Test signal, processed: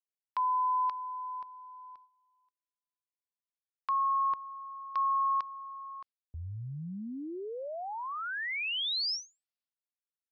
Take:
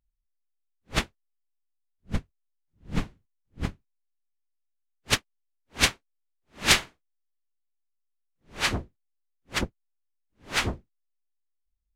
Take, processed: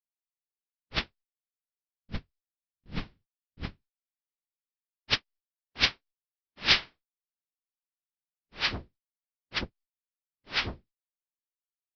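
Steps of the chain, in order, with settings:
noise gate −51 dBFS, range −36 dB
Butterworth low-pass 5,400 Hz 96 dB per octave
high-shelf EQ 2,200 Hz +9.5 dB
level −7.5 dB

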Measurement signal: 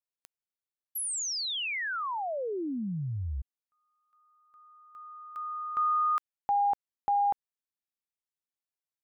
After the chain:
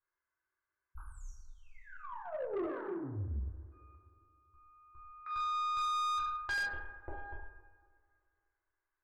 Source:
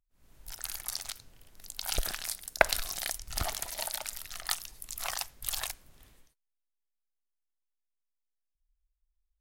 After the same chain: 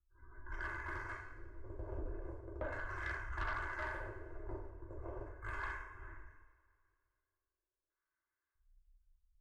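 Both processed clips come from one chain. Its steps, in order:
lower of the sound and its delayed copy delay 1.9 ms
downward compressor 2.5 to 1, threshold −48 dBFS
drawn EQ curve 100 Hz 0 dB, 170 Hz −25 dB, 320 Hz +7 dB, 510 Hz −10 dB, 910 Hz +1 dB, 1,500 Hz +2 dB, 2,700 Hz −9 dB, 3,800 Hz −18 dB, 6,800 Hz −3 dB, 11,000 Hz −8 dB
gate on every frequency bin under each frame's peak −30 dB strong
auto-filter low-pass square 0.38 Hz 510–1,700 Hz
high-shelf EQ 11,000 Hz +7 dB
coupled-rooms reverb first 0.75 s, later 2.4 s, from −18 dB, DRR −5 dB
soft clipping −36.5 dBFS
level +4.5 dB

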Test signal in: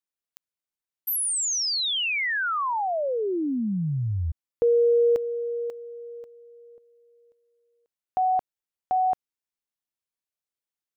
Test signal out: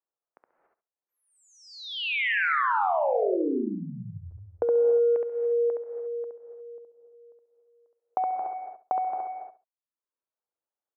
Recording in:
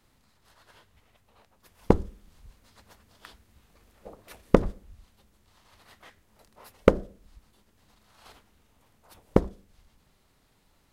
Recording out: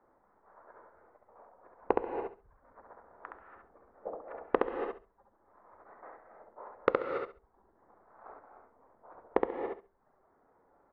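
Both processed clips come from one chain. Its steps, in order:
adaptive Wiener filter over 15 samples
low-pass that shuts in the quiet parts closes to 1,300 Hz, open at −22.5 dBFS
reverb reduction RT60 0.77 s
treble cut that deepens with the level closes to 2,700 Hz, closed at −25 dBFS
three-way crossover with the lows and the highs turned down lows −23 dB, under 350 Hz, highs −23 dB, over 2,500 Hz
downward compressor 5 to 1, threshold −34 dBFS
high-frequency loss of the air 130 metres
repeating echo 68 ms, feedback 20%, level −3 dB
reverb whose tail is shaped and stops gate 310 ms rising, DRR 5 dB
level +8 dB

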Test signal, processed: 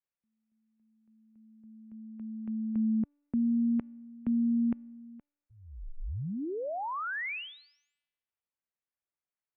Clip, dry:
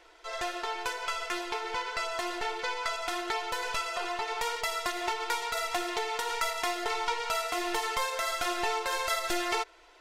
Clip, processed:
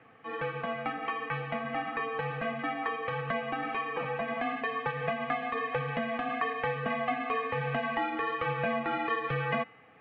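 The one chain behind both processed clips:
single-sideband voice off tune −210 Hz 190–2,800 Hz
tuned comb filter 290 Hz, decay 1.1 s, mix 40%
level +5 dB

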